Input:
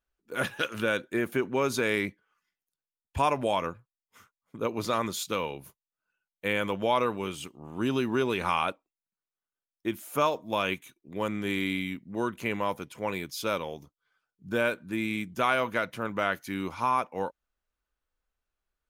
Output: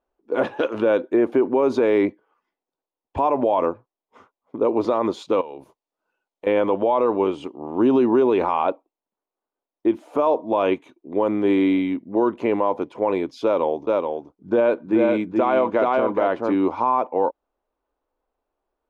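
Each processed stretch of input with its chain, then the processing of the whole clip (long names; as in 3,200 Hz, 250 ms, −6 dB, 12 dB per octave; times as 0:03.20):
0:05.41–0:06.47: parametric band 12,000 Hz +12.5 dB 2.2 octaves + downward compressor 16 to 1, threshold −43 dBFS
0:13.44–0:16.55: low-pass filter 9,300 Hz 24 dB per octave + single-tap delay 428 ms −4.5 dB
whole clip: low-pass filter 3,700 Hz 12 dB per octave; flat-topped bell 510 Hz +15.5 dB 2.4 octaves; brickwall limiter −10 dBFS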